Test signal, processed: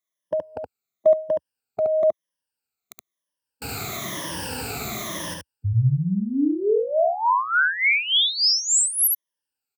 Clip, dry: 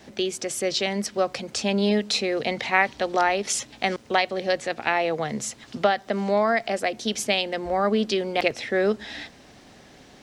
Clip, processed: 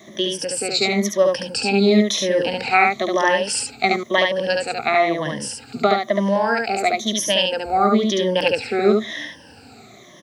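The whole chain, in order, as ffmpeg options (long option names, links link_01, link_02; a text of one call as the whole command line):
ffmpeg -i in.wav -af "afftfilt=real='re*pow(10,18/40*sin(2*PI*(1.2*log(max(b,1)*sr/1024/100)/log(2)-(-1)*(pts-256)/sr)))':imag='im*pow(10,18/40*sin(2*PI*(1.2*log(max(b,1)*sr/1024/100)/log(2)-(-1)*(pts-256)/sr)))':win_size=1024:overlap=0.75,highpass=frequency=74:width=0.5412,highpass=frequency=74:width=1.3066,aecho=1:1:71:0.708" out.wav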